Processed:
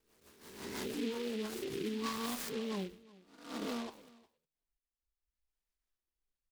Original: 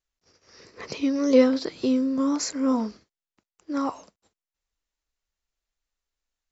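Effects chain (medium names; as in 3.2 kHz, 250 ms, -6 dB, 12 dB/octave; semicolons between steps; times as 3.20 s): reverse spectral sustain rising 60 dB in 0.94 s; reverb removal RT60 1.9 s; low-pass 6.2 kHz 24 dB/octave; compression 8:1, threshold -26 dBFS, peak gain reduction 13.5 dB; peak limiter -29 dBFS, peak gain reduction 11 dB; rotary cabinet horn 6 Hz, later 0.85 Hz, at 1.23 s; formant-preserving pitch shift -3 st; delay 361 ms -22 dB; on a send at -17 dB: reverberation RT60 0.30 s, pre-delay 5 ms; on the sum: delay time shaken by noise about 2.8 kHz, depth 0.099 ms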